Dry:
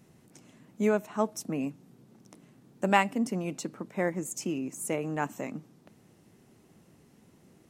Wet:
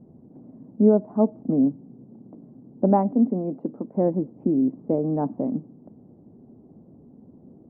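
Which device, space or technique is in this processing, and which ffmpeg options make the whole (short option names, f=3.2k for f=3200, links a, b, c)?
under water: -filter_complex "[0:a]asettb=1/sr,asplit=3[a][b][c];[a]atrim=end=3.124[d];[b]atrim=start=3.12:end=3.95,asetpts=PTS-STARTPTS,afade=t=in:d=0.004:c=qsin,afade=t=out:st=0.826:d=0.004:c=qsin,highpass=f=250:p=1[e];[c]atrim=start=3.946[f];[d][e]acrossfade=d=0.004:c1=hsin:c2=qsin[g];[g][f]acrossfade=d=0.004:c1=qsin:c2=hsin,lowpass=f=730:w=0.5412,lowpass=f=730:w=1.3066,equalizer=f=250:t=o:w=0.44:g=7.5,volume=7.5dB"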